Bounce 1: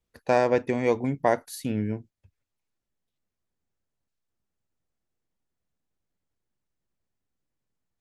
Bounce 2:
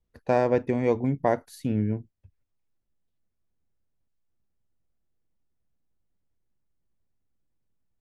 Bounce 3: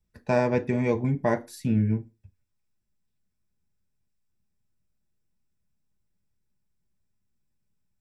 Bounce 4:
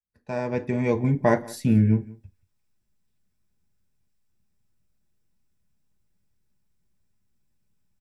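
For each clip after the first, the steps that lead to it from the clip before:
spectral tilt −2 dB per octave; level −2.5 dB
convolution reverb, pre-delay 3 ms, DRR 4.5 dB
fade in at the beginning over 1.28 s; single-tap delay 179 ms −21.5 dB; level +4.5 dB

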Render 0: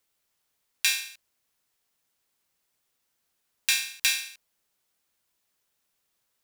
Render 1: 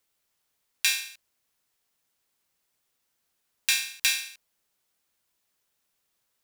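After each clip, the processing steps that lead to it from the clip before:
no processing that can be heard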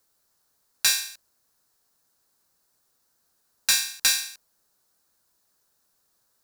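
gain into a clipping stage and back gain 16 dB
flat-topped bell 2,600 Hz −9.5 dB 1 octave
level +6.5 dB

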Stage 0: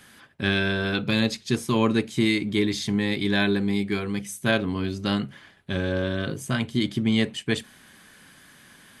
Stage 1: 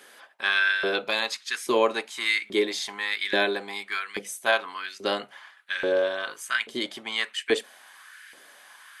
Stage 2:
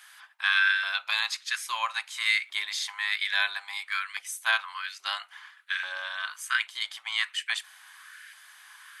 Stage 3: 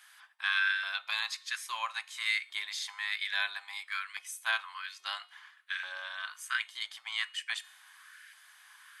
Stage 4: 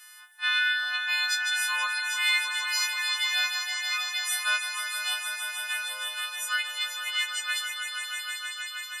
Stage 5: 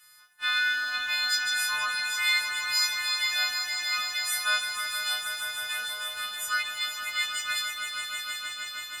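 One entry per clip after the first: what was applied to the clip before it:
low-shelf EQ 130 Hz −6 dB; auto-filter high-pass saw up 1.2 Hz 400–2,000 Hz
inverse Chebyshev high-pass filter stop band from 490 Hz, stop band 40 dB
tuned comb filter 360 Hz, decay 0.79 s, mix 50%
every partial snapped to a pitch grid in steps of 3 semitones; echo that builds up and dies away 158 ms, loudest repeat 5, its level −8 dB
mu-law and A-law mismatch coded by A; on a send at −1.5 dB: convolution reverb RT60 0.45 s, pre-delay 3 ms

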